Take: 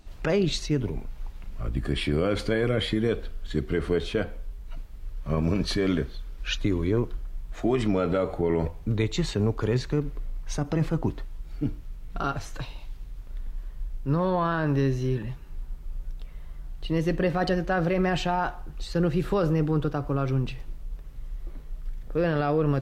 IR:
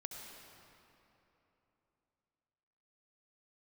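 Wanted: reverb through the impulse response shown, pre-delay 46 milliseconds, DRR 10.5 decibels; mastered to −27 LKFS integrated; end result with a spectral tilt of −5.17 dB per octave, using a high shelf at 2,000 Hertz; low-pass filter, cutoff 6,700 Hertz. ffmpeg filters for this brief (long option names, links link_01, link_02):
-filter_complex "[0:a]lowpass=6700,highshelf=frequency=2000:gain=5.5,asplit=2[link_01][link_02];[1:a]atrim=start_sample=2205,adelay=46[link_03];[link_02][link_03]afir=irnorm=-1:irlink=0,volume=-8dB[link_04];[link_01][link_04]amix=inputs=2:normalize=0,volume=-0.5dB"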